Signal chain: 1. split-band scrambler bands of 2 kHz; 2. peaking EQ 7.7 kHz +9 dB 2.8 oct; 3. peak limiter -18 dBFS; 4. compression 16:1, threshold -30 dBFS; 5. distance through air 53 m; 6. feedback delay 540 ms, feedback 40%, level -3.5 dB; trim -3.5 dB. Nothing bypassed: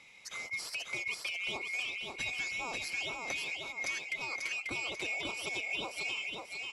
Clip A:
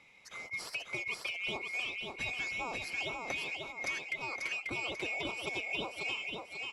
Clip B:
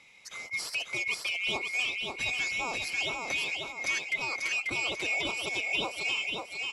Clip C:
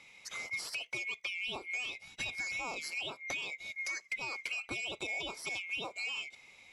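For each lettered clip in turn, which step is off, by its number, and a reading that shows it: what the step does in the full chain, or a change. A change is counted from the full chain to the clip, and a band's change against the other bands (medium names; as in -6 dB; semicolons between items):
2, 8 kHz band -7.5 dB; 4, mean gain reduction 4.0 dB; 6, echo-to-direct -2.5 dB to none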